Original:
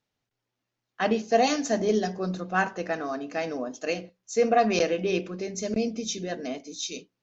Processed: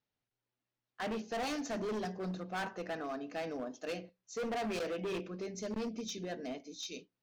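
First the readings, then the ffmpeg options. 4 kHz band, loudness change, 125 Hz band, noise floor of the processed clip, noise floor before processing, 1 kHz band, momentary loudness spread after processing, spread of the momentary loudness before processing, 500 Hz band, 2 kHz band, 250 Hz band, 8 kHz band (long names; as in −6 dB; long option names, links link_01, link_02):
−10.0 dB, −12.0 dB, −9.5 dB, below −85 dBFS, −85 dBFS, −13.5 dB, 6 LU, 11 LU, −12.5 dB, −11.5 dB, −10.5 dB, can't be measured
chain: -af "lowpass=5400,volume=26.5dB,asoftclip=hard,volume=-26.5dB,volume=-7.5dB"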